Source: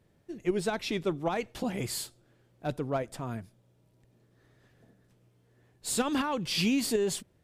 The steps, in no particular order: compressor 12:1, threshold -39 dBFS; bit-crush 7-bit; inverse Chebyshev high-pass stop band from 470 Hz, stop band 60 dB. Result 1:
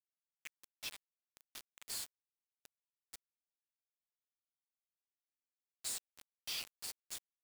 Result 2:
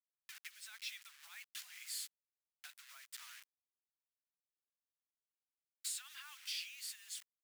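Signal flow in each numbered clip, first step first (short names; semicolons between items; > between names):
compressor > inverse Chebyshev high-pass > bit-crush; bit-crush > compressor > inverse Chebyshev high-pass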